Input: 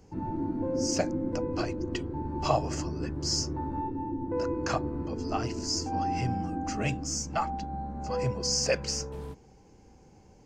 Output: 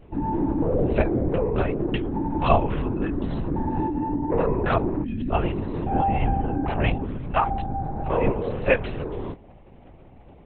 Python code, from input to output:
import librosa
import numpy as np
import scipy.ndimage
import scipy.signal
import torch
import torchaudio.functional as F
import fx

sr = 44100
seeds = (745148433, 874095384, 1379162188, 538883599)

y = fx.spec_erase(x, sr, start_s=5.03, length_s=0.27, low_hz=320.0, high_hz=1500.0)
y = fx.lpc_vocoder(y, sr, seeds[0], excitation='whisper', order=10)
y = y * librosa.db_to_amplitude(8.0)